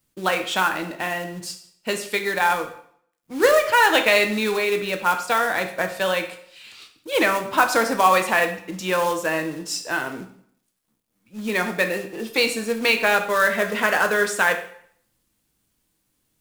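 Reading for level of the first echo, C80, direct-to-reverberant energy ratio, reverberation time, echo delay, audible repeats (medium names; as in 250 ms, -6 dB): no echo, 13.0 dB, 5.0 dB, 0.60 s, no echo, no echo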